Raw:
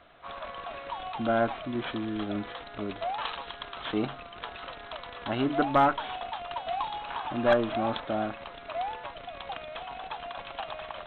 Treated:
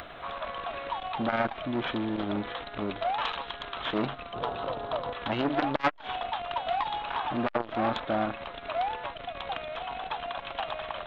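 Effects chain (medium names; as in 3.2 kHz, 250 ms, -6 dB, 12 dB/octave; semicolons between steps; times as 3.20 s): 4.33–5.13 s: ten-band graphic EQ 125 Hz +11 dB, 250 Hz +4 dB, 500 Hz +10 dB, 1 kHz +5 dB, 2 kHz -9 dB; upward compressor, threshold -38 dBFS; transformer saturation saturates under 1.6 kHz; trim +4 dB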